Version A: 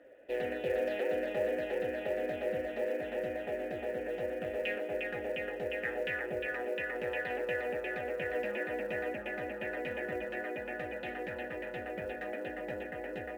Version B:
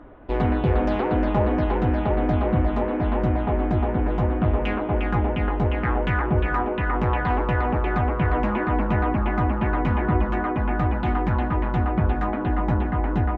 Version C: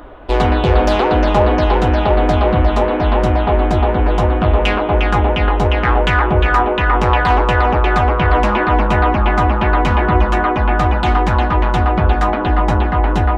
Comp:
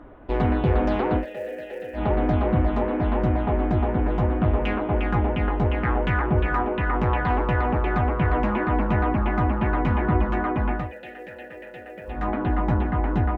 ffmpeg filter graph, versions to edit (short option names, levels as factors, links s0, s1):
-filter_complex "[0:a]asplit=2[s0][s1];[1:a]asplit=3[s2][s3][s4];[s2]atrim=end=1.26,asetpts=PTS-STARTPTS[s5];[s0]atrim=start=1.16:end=2.03,asetpts=PTS-STARTPTS[s6];[s3]atrim=start=1.93:end=10.93,asetpts=PTS-STARTPTS[s7];[s1]atrim=start=10.69:end=12.29,asetpts=PTS-STARTPTS[s8];[s4]atrim=start=12.05,asetpts=PTS-STARTPTS[s9];[s5][s6]acrossfade=d=0.1:c1=tri:c2=tri[s10];[s10][s7]acrossfade=d=0.1:c1=tri:c2=tri[s11];[s11][s8]acrossfade=d=0.24:c1=tri:c2=tri[s12];[s12][s9]acrossfade=d=0.24:c1=tri:c2=tri"